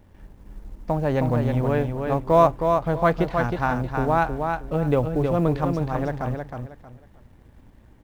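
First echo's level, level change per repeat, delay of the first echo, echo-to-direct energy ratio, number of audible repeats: -5.0 dB, -11.5 dB, 316 ms, -4.5 dB, 3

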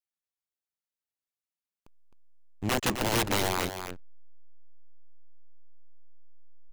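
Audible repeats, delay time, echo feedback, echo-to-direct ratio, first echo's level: 1, 262 ms, no regular repeats, -8.0 dB, -8.0 dB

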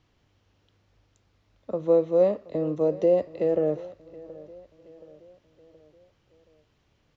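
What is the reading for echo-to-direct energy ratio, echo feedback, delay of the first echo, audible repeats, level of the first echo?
-19.0 dB, 49%, 724 ms, 3, -20.0 dB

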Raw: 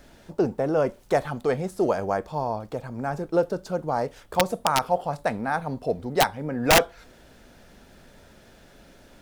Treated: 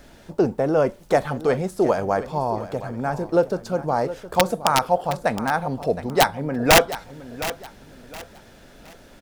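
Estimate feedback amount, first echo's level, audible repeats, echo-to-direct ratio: 30%, -14.0 dB, 3, -13.5 dB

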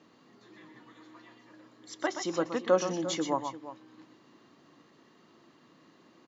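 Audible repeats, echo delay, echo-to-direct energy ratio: 2, 124 ms, -6.5 dB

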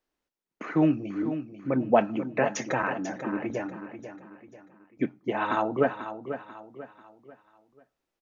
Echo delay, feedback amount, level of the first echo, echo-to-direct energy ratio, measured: 491 ms, 39%, -10.5 dB, -10.0 dB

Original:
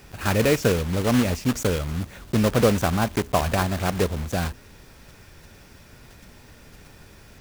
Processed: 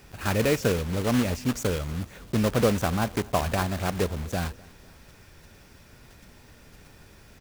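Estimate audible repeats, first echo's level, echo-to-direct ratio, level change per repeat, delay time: 2, -24.0 dB, -23.0 dB, -5.0 dB, 251 ms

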